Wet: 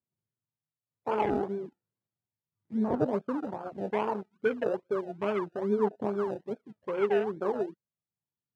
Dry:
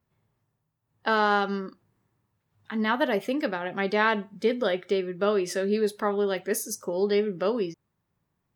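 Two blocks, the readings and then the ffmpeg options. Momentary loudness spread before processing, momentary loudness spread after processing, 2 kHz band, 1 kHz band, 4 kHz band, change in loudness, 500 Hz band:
7 LU, 10 LU, -12.5 dB, -6.0 dB, under -15 dB, -5.0 dB, -4.0 dB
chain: -af "flanger=delay=0.2:depth=2.7:regen=-78:speed=1.5:shape=sinusoidal,lowpass=f=1.1k:w=0.5412,lowpass=f=1.1k:w=1.3066,acrusher=samples=32:mix=1:aa=0.000001:lfo=1:lforange=19.2:lforate=2.4,highpass=120,aphaser=in_gain=1:out_gain=1:delay=2.8:decay=0.35:speed=0.34:type=triangular,afwtdn=0.02,aemphasis=mode=reproduction:type=75fm"

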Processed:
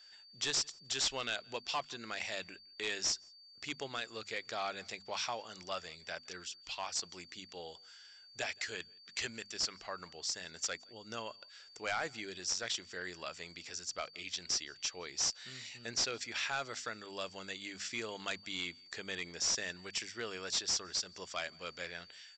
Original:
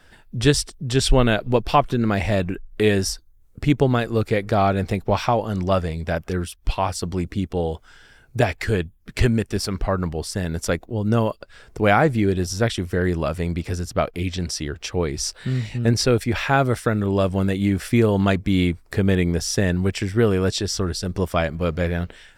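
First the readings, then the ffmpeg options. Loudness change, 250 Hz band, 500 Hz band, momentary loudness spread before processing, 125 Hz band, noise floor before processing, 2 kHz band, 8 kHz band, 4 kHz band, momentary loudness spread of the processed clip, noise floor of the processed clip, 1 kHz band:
-16.0 dB, -29.5 dB, -23.0 dB, 8 LU, -35.5 dB, -53 dBFS, -12.5 dB, -6.0 dB, -6.5 dB, 12 LU, -59 dBFS, -18.5 dB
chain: -filter_complex "[0:a]aderivative,bandreject=f=50:t=h:w=6,bandreject=f=100:t=h:w=6,bandreject=f=150:t=h:w=6,bandreject=f=200:t=h:w=6,bandreject=f=250:t=h:w=6,aresample=16000,asoftclip=type=hard:threshold=-29dB,aresample=44100,asplit=2[a][b];[b]adelay=169.1,volume=-28dB,highshelf=f=4k:g=-3.8[c];[a][c]amix=inputs=2:normalize=0,aeval=exprs='val(0)+0.00158*sin(2*PI*4600*n/s)':c=same"

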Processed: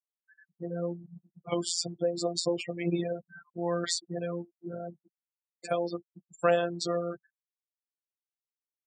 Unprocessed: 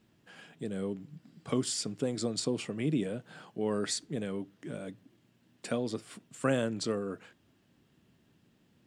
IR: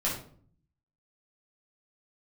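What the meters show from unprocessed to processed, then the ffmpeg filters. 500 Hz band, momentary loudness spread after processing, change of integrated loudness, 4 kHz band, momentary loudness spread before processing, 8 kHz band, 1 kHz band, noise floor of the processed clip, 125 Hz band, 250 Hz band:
+4.0 dB, 15 LU, +2.5 dB, +3.0 dB, 15 LU, +1.5 dB, +7.0 dB, under -85 dBFS, -0.5 dB, -1.5 dB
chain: -af "afftfilt=real='re*gte(hypot(re,im),0.0141)':imag='im*gte(hypot(re,im),0.0141)':win_size=1024:overlap=0.75,afftfilt=real='hypot(re,im)*cos(PI*b)':imag='0':win_size=1024:overlap=0.75,highpass=100,equalizer=f=170:t=q:w=4:g=-5,equalizer=f=280:t=q:w=4:g=-8,equalizer=f=740:t=q:w=4:g=9,lowpass=f=7.8k:w=0.5412,lowpass=f=7.8k:w=1.3066,volume=7.5dB"

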